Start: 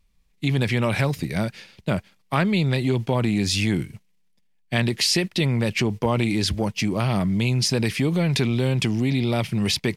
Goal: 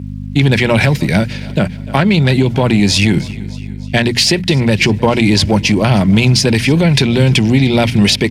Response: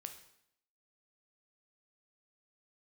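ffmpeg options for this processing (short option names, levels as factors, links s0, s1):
-filter_complex "[0:a]acontrast=33,adynamicequalizer=threshold=0.0447:dfrequency=400:dqfactor=0.87:tfrequency=400:tqfactor=0.87:attack=5:release=100:ratio=0.375:range=1.5:mode=cutabove:tftype=bell,bandreject=f=60:t=h:w=6,bandreject=f=120:t=h:w=6,bandreject=f=180:t=h:w=6,bandreject=f=240:t=h:w=6,acontrast=37,bandreject=f=1200:w=6.5,acrusher=bits=9:mix=0:aa=0.000001,aeval=exprs='val(0)+0.0708*(sin(2*PI*50*n/s)+sin(2*PI*2*50*n/s)/2+sin(2*PI*3*50*n/s)/3+sin(2*PI*4*50*n/s)/4+sin(2*PI*5*50*n/s)/5)':c=same,highpass=89,asplit=2[s0][s1];[s1]aecho=0:1:364|728|1092|1456:0.0841|0.0429|0.0219|0.0112[s2];[s0][s2]amix=inputs=2:normalize=0,alimiter=limit=0.473:level=0:latency=1:release=340,highshelf=f=10000:g=-10,atempo=1.2,volume=1.78"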